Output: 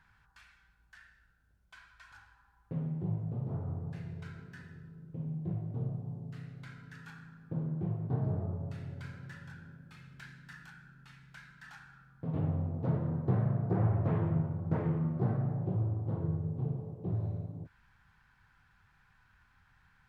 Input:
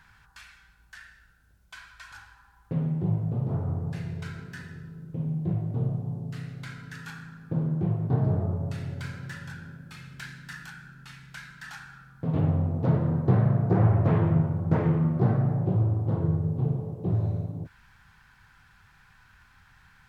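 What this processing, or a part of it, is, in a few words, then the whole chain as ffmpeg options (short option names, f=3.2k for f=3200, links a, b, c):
behind a face mask: -af "highshelf=f=3.4k:g=-7.5,volume=-8dB"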